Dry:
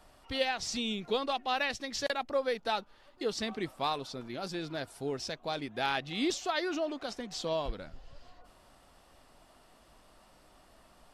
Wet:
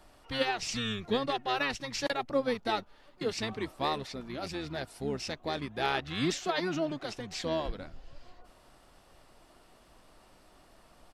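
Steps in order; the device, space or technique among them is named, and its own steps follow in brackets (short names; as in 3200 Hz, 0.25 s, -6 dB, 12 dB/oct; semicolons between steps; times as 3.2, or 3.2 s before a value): octave pedal (harmoniser -12 st -6 dB)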